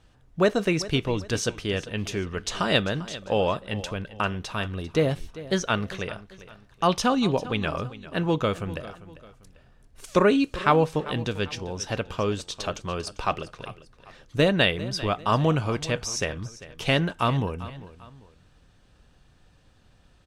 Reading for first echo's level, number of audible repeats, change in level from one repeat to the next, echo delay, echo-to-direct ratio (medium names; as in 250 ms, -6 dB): -16.5 dB, 2, -8.5 dB, 396 ms, -16.0 dB